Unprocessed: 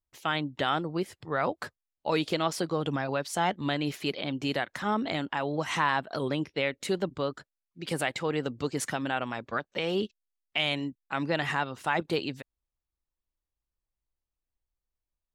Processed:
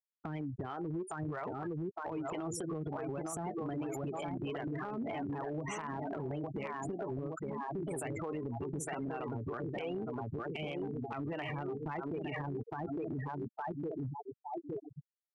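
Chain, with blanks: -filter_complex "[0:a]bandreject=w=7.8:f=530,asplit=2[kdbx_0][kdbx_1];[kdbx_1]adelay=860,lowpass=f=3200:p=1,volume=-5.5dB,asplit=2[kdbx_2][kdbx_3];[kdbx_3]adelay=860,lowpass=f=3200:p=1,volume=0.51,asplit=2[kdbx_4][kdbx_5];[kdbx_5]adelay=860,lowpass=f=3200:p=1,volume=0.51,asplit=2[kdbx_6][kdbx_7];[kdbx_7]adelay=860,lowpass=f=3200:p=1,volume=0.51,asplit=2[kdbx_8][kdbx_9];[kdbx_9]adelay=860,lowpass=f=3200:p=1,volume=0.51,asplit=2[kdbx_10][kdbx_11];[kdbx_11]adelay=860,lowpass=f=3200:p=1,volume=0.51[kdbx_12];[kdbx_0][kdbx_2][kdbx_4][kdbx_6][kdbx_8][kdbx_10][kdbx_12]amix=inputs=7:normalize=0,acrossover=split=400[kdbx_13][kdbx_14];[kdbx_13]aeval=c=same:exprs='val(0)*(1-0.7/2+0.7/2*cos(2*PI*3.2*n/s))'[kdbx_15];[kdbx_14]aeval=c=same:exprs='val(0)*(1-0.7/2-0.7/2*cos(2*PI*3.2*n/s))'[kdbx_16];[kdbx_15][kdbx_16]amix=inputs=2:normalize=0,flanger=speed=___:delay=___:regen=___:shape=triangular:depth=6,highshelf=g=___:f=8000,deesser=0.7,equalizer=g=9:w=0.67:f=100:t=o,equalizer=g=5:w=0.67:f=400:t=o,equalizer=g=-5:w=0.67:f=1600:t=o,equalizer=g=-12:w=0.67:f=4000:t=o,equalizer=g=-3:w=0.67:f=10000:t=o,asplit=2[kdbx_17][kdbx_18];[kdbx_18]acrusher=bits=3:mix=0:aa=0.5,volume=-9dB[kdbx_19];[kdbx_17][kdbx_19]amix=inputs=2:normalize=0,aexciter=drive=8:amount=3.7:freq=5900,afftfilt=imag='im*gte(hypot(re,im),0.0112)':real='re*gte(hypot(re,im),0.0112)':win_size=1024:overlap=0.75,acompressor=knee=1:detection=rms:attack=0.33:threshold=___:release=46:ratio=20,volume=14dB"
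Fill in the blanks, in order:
0.66, 4.4, 60, -10, -47dB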